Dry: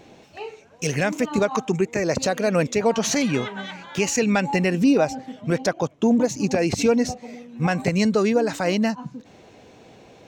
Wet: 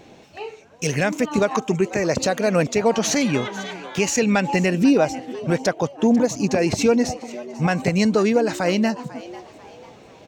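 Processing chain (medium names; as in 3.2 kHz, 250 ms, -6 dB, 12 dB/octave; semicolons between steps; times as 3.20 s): frequency-shifting echo 495 ms, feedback 40%, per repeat +140 Hz, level -18 dB; trim +1.5 dB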